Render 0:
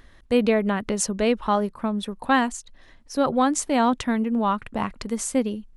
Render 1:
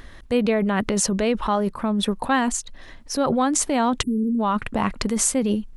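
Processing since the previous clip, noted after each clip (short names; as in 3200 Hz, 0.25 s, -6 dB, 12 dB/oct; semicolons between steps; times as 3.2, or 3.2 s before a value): in parallel at +1 dB: negative-ratio compressor -28 dBFS, ratio -0.5; on the sum: spectral delete 4.02–4.4, 460–7300 Hz; gain -1.5 dB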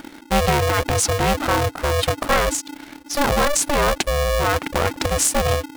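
in parallel at -10 dB: bit-crush 6-bit; on the sum: polarity switched at an audio rate 290 Hz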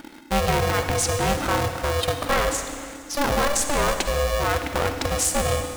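reverb RT60 2.0 s, pre-delay 45 ms, DRR 6.5 dB; gain -4 dB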